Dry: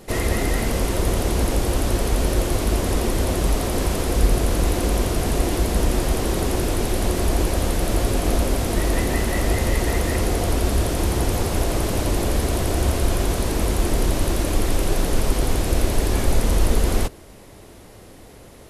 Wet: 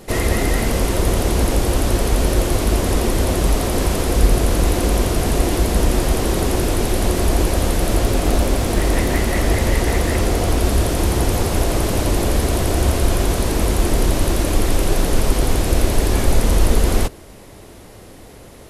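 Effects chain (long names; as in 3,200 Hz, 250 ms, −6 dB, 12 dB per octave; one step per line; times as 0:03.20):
0:07.99–0:10.60: highs frequency-modulated by the lows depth 0.34 ms
level +3.5 dB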